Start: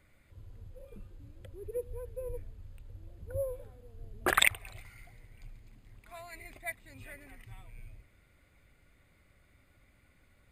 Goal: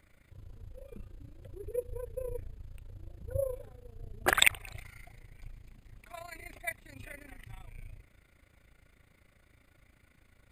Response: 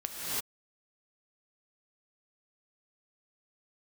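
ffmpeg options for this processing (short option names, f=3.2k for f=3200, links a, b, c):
-af "tremolo=f=28:d=0.788,volume=5dB"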